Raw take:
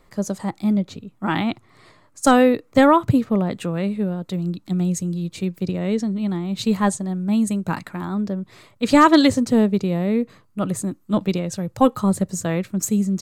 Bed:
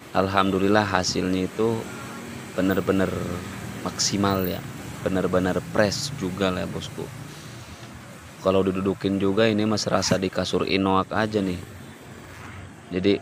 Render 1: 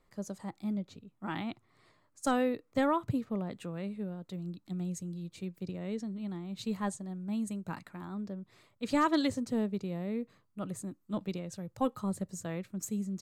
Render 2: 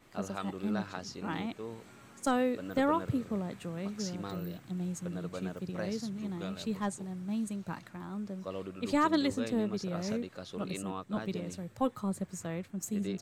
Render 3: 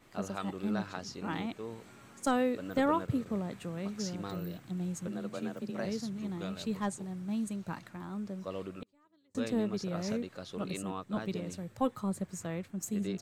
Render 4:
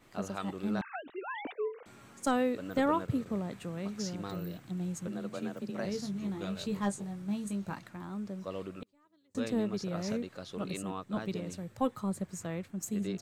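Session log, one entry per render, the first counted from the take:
trim -15 dB
add bed -19.5 dB
2.86–3.26 s: expander -39 dBFS; 5.07–5.85 s: frequency shift +32 Hz; 8.79–9.35 s: inverted gate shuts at -32 dBFS, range -41 dB
0.81–1.86 s: formants replaced by sine waves; 5.92–7.74 s: doubling 20 ms -6 dB

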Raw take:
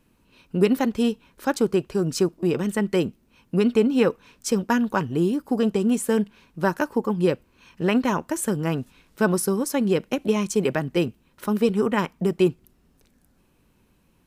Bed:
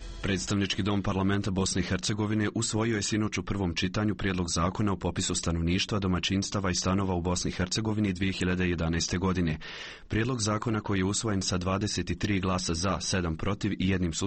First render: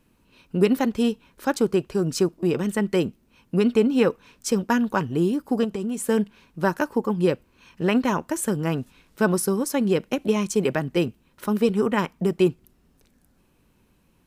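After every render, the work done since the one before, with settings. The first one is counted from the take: 5.64–6.07 s: compression 4:1, threshold -25 dBFS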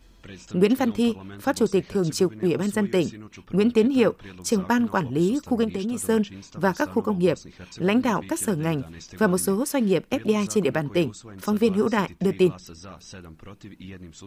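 add bed -13.5 dB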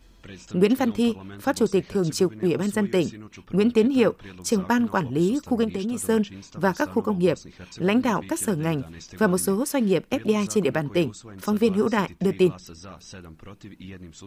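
no audible change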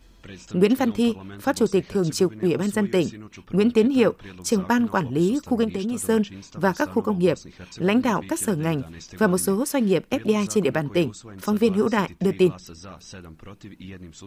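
trim +1 dB

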